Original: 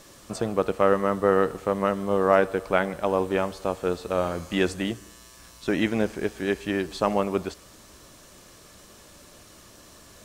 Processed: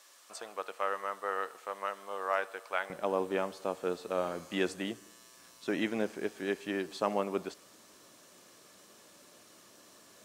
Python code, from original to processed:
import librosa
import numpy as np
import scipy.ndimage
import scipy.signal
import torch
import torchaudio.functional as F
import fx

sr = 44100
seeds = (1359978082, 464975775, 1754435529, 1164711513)

y = fx.highpass(x, sr, hz=fx.steps((0.0, 870.0), (2.9, 210.0)), slope=12)
y = F.gain(torch.from_numpy(y), -7.0).numpy()